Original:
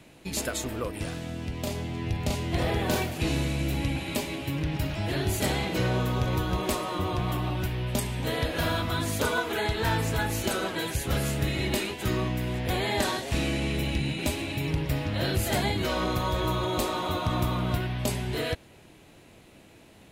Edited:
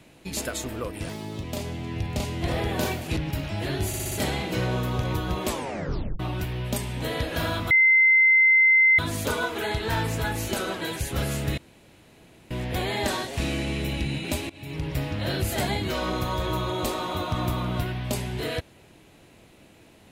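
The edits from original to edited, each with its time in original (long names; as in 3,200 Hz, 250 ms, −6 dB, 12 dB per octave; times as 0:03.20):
0:01.09–0:01.54: play speed 130%
0:03.27–0:04.63: remove
0:05.34: stutter 0.06 s, 5 plays
0:06.70: tape stop 0.72 s
0:08.93: insert tone 2,070 Hz −14 dBFS 1.28 s
0:11.52–0:12.45: fill with room tone
0:14.44–0:14.89: fade in, from −21 dB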